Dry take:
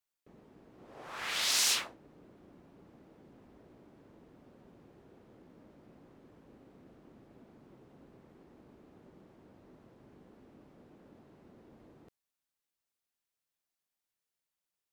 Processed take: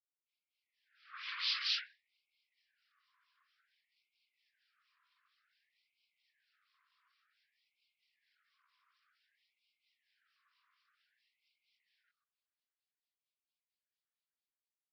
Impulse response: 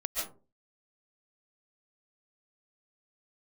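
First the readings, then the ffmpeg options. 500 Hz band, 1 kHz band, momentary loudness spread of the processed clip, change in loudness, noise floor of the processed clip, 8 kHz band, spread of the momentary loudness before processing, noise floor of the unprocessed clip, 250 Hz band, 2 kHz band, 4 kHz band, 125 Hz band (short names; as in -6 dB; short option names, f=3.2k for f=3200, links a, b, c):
under -40 dB, -9.5 dB, 21 LU, -6.0 dB, under -85 dBFS, -27.5 dB, 20 LU, under -85 dBFS, under -40 dB, -5.5 dB, -4.5 dB, under -40 dB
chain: -filter_complex "[0:a]bandreject=f=50:t=h:w=6,bandreject=f=100:t=h:w=6,bandreject=f=150:t=h:w=6,bandreject=f=200:t=h:w=6,bandreject=f=250:t=h:w=6,bandreject=f=300:t=h:w=6,bandreject=f=350:t=h:w=6,bandreject=f=400:t=h:w=6,dynaudnorm=f=240:g=7:m=14dB,aresample=11025,acrusher=bits=5:mode=log:mix=0:aa=0.000001,aresample=44100,acrossover=split=2100[a][b];[a]aeval=exprs='val(0)*(1-1/2+1/2*cos(2*PI*4.4*n/s))':c=same[c];[b]aeval=exprs='val(0)*(1-1/2-1/2*cos(2*PI*4.4*n/s))':c=same[d];[c][d]amix=inputs=2:normalize=0,flanger=delay=18:depth=5:speed=2.2,afftfilt=real='hypot(re,im)*cos(2*PI*random(0))':imag='hypot(re,im)*sin(2*PI*random(1))':win_size=512:overlap=0.75,acrossover=split=940[e][f];[e]adelay=130[g];[g][f]amix=inputs=2:normalize=0,afftfilt=real='re*gte(b*sr/1024,950*pow(2100/950,0.5+0.5*sin(2*PI*0.54*pts/sr)))':imag='im*gte(b*sr/1024,950*pow(2100/950,0.5+0.5*sin(2*PI*0.54*pts/sr)))':win_size=1024:overlap=0.75,volume=-3.5dB"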